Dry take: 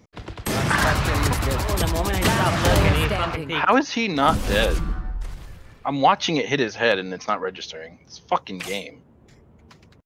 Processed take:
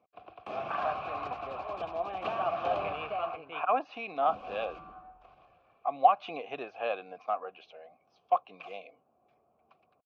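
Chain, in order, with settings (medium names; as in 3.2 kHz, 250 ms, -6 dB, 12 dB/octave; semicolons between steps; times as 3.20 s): vowel filter a; distance through air 180 m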